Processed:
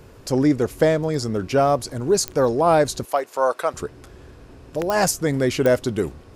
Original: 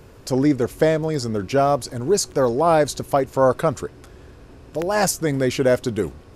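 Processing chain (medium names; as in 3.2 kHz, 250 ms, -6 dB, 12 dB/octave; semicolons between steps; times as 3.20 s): 3.05–3.74 s: high-pass 590 Hz 12 dB/octave; clicks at 2.28/4.90/5.66 s, -9 dBFS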